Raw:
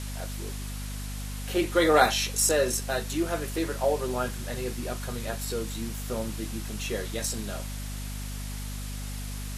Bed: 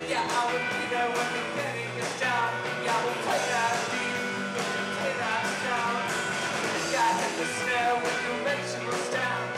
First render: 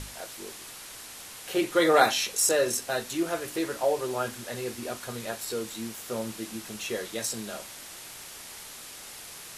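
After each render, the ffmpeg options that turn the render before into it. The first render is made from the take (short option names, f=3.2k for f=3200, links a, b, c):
-af "bandreject=f=50:t=h:w=6,bandreject=f=100:t=h:w=6,bandreject=f=150:t=h:w=6,bandreject=f=200:t=h:w=6,bandreject=f=250:t=h:w=6,bandreject=f=300:t=h:w=6"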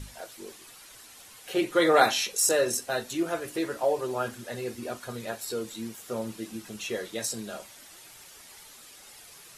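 -af "afftdn=nr=9:nf=-44"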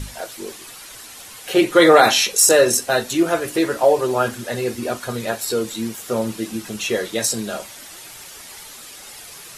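-af "alimiter=level_in=11dB:limit=-1dB:release=50:level=0:latency=1"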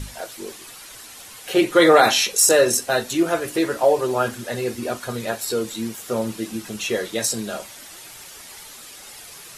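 -af "volume=-2dB"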